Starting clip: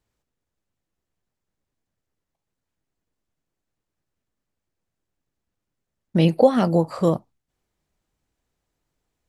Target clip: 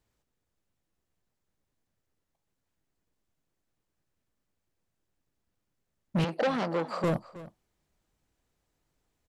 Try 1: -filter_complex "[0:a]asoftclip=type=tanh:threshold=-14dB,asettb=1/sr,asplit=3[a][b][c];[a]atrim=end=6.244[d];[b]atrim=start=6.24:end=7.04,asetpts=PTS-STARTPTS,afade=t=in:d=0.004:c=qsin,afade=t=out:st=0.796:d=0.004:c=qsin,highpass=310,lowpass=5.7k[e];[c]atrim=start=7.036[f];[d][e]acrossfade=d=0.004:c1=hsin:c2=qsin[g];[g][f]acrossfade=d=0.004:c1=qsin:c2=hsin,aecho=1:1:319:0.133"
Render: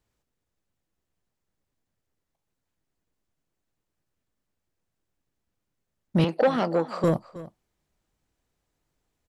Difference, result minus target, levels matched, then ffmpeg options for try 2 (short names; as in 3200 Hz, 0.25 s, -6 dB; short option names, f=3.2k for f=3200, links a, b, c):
soft clip: distortion -6 dB
-filter_complex "[0:a]asoftclip=type=tanh:threshold=-23dB,asettb=1/sr,asplit=3[a][b][c];[a]atrim=end=6.244[d];[b]atrim=start=6.24:end=7.04,asetpts=PTS-STARTPTS,afade=t=in:d=0.004:c=qsin,afade=t=out:st=0.796:d=0.004:c=qsin,highpass=310,lowpass=5.7k[e];[c]atrim=start=7.036[f];[d][e]acrossfade=d=0.004:c1=hsin:c2=qsin[g];[g][f]acrossfade=d=0.004:c1=qsin:c2=hsin,aecho=1:1:319:0.133"